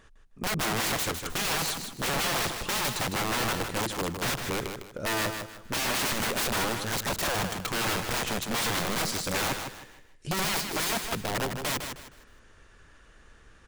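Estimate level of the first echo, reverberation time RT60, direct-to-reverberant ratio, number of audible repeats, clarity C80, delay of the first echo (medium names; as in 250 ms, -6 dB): -7.0 dB, no reverb, no reverb, 3, no reverb, 156 ms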